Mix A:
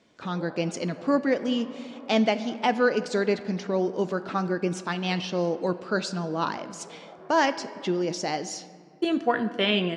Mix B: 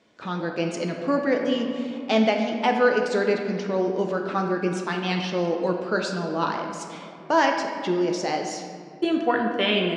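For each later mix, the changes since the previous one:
speech: send +11.5 dB
master: add bass and treble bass −4 dB, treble −3 dB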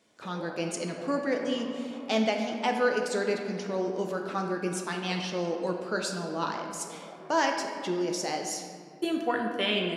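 speech −6.5 dB
master: remove high-frequency loss of the air 120 metres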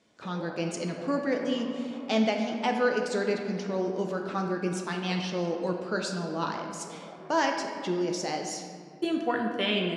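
speech: add high-frequency loss of the air 67 metres
master: add bass and treble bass +4 dB, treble +3 dB

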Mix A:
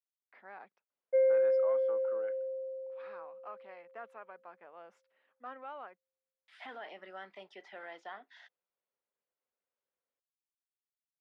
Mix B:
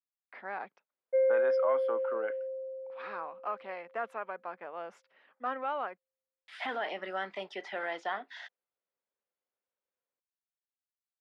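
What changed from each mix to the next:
speech +11.0 dB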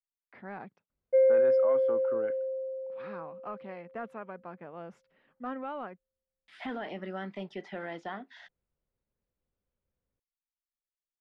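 speech −6.0 dB
master: remove high-pass filter 590 Hz 12 dB per octave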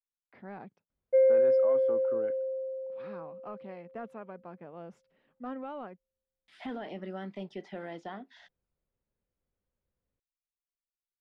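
speech: add parametric band 1,600 Hz −6 dB 1.9 octaves

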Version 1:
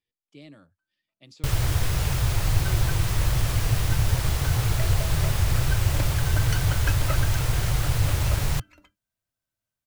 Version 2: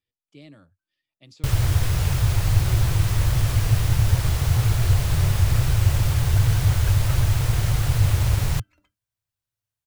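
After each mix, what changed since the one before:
second sound −10.0 dB
master: add parametric band 98 Hz +6 dB 0.81 octaves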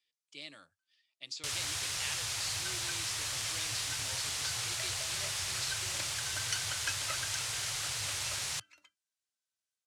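first sound −10.5 dB
master: add meter weighting curve ITU-R 468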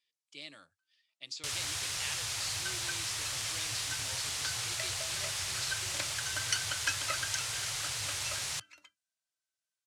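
second sound +4.5 dB

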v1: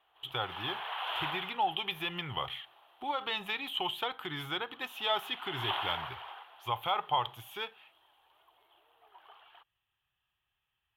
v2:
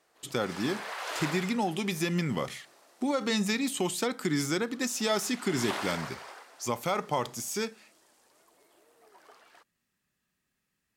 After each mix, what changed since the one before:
master: remove drawn EQ curve 110 Hz 0 dB, 220 Hz −24 dB, 350 Hz −11 dB, 570 Hz −10 dB, 800 Hz +4 dB, 2,100 Hz −6 dB, 3,200 Hz +9 dB, 4,900 Hz −27 dB, 7,800 Hz −30 dB, 12,000 Hz −9 dB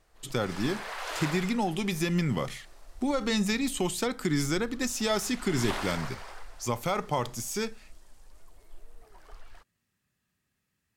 speech: add parametric band 95 Hz +9 dB 1.1 octaves
background: remove high-pass filter 240 Hz 24 dB per octave

